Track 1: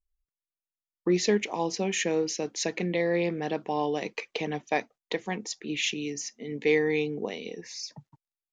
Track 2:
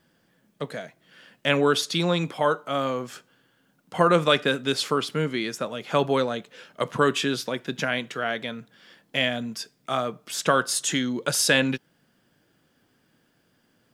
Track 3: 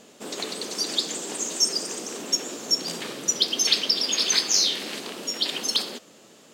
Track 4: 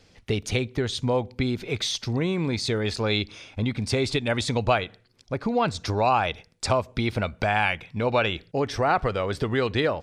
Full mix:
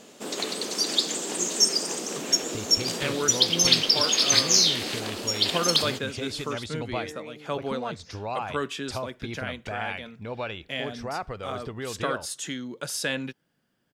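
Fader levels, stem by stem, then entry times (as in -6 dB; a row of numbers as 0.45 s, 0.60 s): -16.0 dB, -8.5 dB, +1.5 dB, -10.5 dB; 0.30 s, 1.55 s, 0.00 s, 2.25 s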